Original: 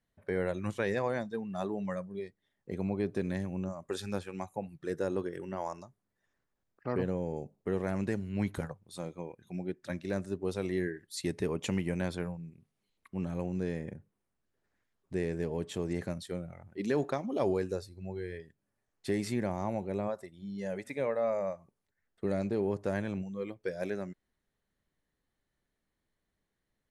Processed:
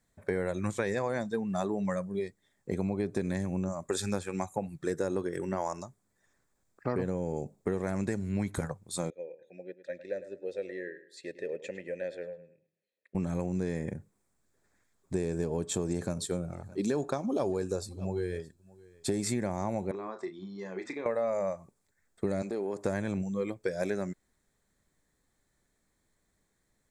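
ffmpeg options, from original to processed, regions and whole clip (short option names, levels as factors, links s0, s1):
-filter_complex "[0:a]asettb=1/sr,asplit=3[s0][s1][s2];[s0]atrim=end=9.104[s3];[s1]atrim=start=9.1:end=13.15,asetpts=PTS-STARTPTS,afade=t=in:d=0.004:c=qsin,afade=t=out:st=4.046:d=0.004:c=qsin,asplit=3[s4][s5][s6];[s4]bandpass=f=530:t=q:w=8,volume=1[s7];[s5]bandpass=f=1840:t=q:w=8,volume=0.501[s8];[s6]bandpass=f=2480:t=q:w=8,volume=0.355[s9];[s7][s8][s9]amix=inputs=3:normalize=0,equalizer=f=4400:t=o:w=0.84:g=3.5,asplit=2[s10][s11];[s11]adelay=105,lowpass=f=4700:p=1,volume=0.2,asplit=2[s12][s13];[s13]adelay=105,lowpass=f=4700:p=1,volume=0.32,asplit=2[s14][s15];[s15]adelay=105,lowpass=f=4700:p=1,volume=0.32[s16];[s10][s12][s14][s16]amix=inputs=4:normalize=0,atrim=end_sample=178605[s17];[s2]atrim=start=13.146[s18];[s3][s17]acrossfade=d=0.004:c1=hsin:c2=qsin[s19];[s19][s18]acrossfade=d=0.004:c1=qsin:c2=hsin,asettb=1/sr,asplit=3[s20][s21][s22];[s20]atrim=end=15.144[s23];[s21]atrim=start=15.14:end=19.23,asetpts=PTS-STARTPTS,afade=t=in:d=0.004:c=qsin,afade=t=out:st=4.086:d=0.004:c=qsin,equalizer=f=2000:w=6.1:g=-13,aecho=1:1:620:0.0631,atrim=end_sample=180369[s24];[s22]atrim=start=19.226[s25];[s23][s24]acrossfade=d=0.004:c1=hsin:c2=qsin[s26];[s26][s25]acrossfade=d=0.004:c1=qsin:c2=hsin,asettb=1/sr,asplit=3[s27][s28][s29];[s27]atrim=end=19.914[s30];[s28]atrim=start=19.91:end=21.06,asetpts=PTS-STARTPTS,afade=t=in:d=0.004:c=qsin,afade=t=out:st=1.146:d=0.004:c=qsin,acompressor=threshold=0.00794:ratio=4:attack=3.2:release=140:knee=1:detection=peak,highpass=230,equalizer=f=350:t=q:w=4:g=10,equalizer=f=570:t=q:w=4:g=-9,equalizer=f=1100:t=q:w=4:g=9,lowpass=f=5200:w=0.5412,lowpass=f=5200:w=1.3066,asplit=2[s31][s32];[s32]adelay=32,volume=0.398[s33];[s31][s33]amix=inputs=2:normalize=0,atrim=end_sample=50715[s34];[s29]atrim=start=21.056[s35];[s30][s34]acrossfade=d=0.004:c1=hsin:c2=qsin[s36];[s36][s35]acrossfade=d=0.004:c1=qsin:c2=hsin,asettb=1/sr,asplit=3[s37][s38][s39];[s37]atrim=end=22.424[s40];[s38]atrim=start=22.42:end=22.85,asetpts=PTS-STARTPTS,afade=t=in:d=0.004:c=qsin,afade=t=out:st=0.426:d=0.004:c=qsin,highpass=270,acompressor=threshold=0.0158:ratio=5:attack=3.2:release=140:knee=1:detection=peak[s41];[s39]atrim=start=22.846[s42];[s40][s41]acrossfade=d=0.004:c1=hsin:c2=qsin[s43];[s43][s42]acrossfade=d=0.004:c1=qsin:c2=hsin,equalizer=f=7600:t=o:w=0.48:g=11,bandreject=f=2900:w=5.4,acompressor=threshold=0.02:ratio=6,volume=2.24"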